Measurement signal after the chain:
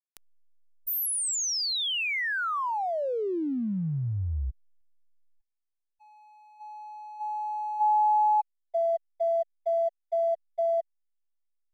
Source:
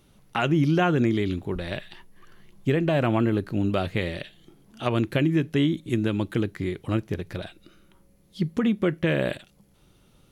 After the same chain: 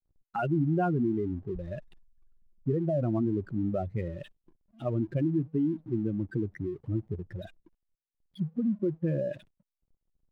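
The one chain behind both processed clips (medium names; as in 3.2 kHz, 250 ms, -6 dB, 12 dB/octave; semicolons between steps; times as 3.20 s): spectral contrast enhancement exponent 2.5; hysteresis with a dead band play -47.5 dBFS; trim -5 dB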